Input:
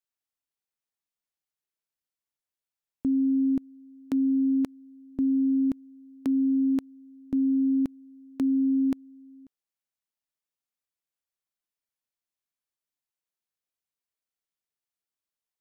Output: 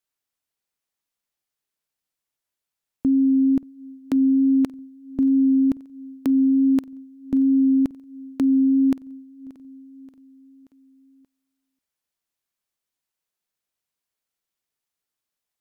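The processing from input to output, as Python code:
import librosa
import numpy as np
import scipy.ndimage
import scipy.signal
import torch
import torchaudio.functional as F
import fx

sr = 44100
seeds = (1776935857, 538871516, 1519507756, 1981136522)

y = fx.vibrato(x, sr, rate_hz=2.3, depth_cents=8.5)
y = fx.echo_feedback(y, sr, ms=580, feedback_pct=55, wet_db=-21.5)
y = F.gain(torch.from_numpy(y), 6.0).numpy()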